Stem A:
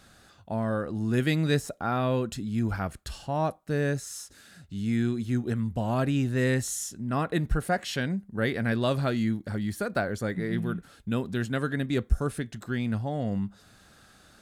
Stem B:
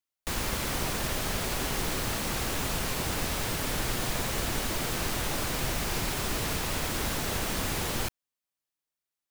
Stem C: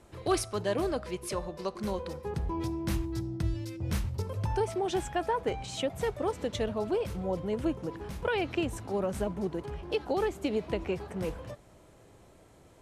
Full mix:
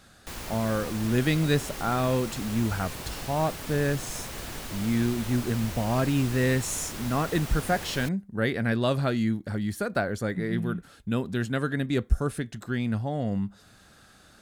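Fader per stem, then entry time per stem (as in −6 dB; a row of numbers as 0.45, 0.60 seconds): +1.0 dB, −7.0 dB, muted; 0.00 s, 0.00 s, muted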